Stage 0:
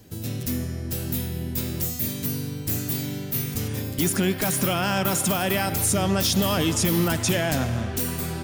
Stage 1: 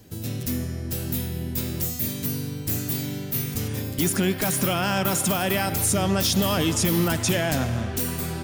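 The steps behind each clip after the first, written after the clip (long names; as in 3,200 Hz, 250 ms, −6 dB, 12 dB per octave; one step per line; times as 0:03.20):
no processing that can be heard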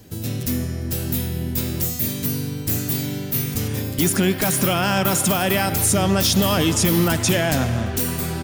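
slap from a distant wall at 59 metres, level −23 dB
level +4 dB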